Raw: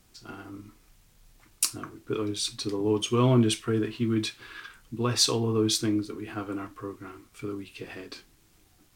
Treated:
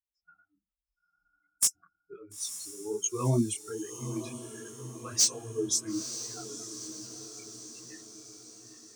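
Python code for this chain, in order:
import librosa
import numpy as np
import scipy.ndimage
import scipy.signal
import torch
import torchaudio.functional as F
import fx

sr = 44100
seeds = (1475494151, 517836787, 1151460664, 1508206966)

p1 = fx.bin_expand(x, sr, power=3.0)
p2 = scipy.signal.sosfilt(scipy.signal.butter(2, 77.0, 'highpass', fs=sr, output='sos'), p1)
p3 = fx.high_shelf_res(p2, sr, hz=4700.0, db=9.5, q=3.0)
p4 = np.clip(p3, -10.0 ** (-13.0 / 20.0), 10.0 ** (-13.0 / 20.0))
p5 = p4 + fx.echo_diffused(p4, sr, ms=934, feedback_pct=58, wet_db=-10.5, dry=0)
y = fx.detune_double(p5, sr, cents=44)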